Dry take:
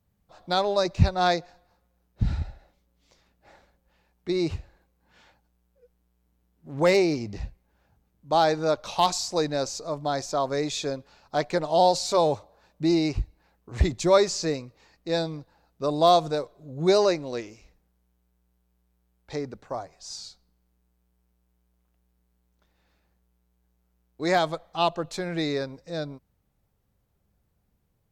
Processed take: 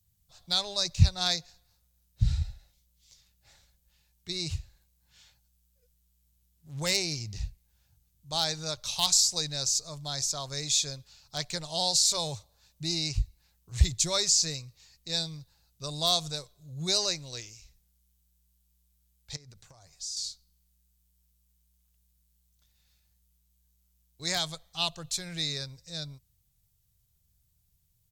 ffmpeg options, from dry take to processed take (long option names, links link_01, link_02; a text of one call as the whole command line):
ffmpeg -i in.wav -filter_complex "[0:a]asettb=1/sr,asplit=3[link_01][link_02][link_03];[link_01]atrim=end=19.364[link_04];[link_02]atrim=start=19.36:end=20.17,asetpts=PTS-STARTPTS,afade=type=in:duration=0.004:curve=qsin,afade=type=out:start_time=0.806:duration=0.004:curve=qsin,acompressor=threshold=-40dB:ratio=16:attack=3.2:release=140:knee=1:detection=peak[link_05];[link_03]atrim=start=20.166[link_06];[link_04][link_05]acrossfade=duration=0.004:curve1=hsin:curve2=qsin[link_07];[link_07][link_06]acrossfade=duration=0.004:curve1=qsin:curve2=hsin,firequalizer=gain_entry='entry(130,0);entry(240,-18);entry(3500,4);entry(7000,10)':delay=0.05:min_phase=1" out.wav